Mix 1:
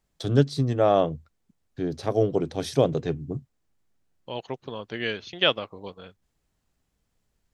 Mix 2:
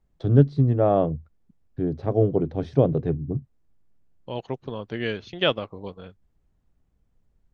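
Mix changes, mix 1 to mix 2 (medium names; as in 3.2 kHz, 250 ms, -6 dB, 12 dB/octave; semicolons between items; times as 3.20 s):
first voice: add tape spacing loss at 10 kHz 29 dB; master: add tilt EQ -2 dB/octave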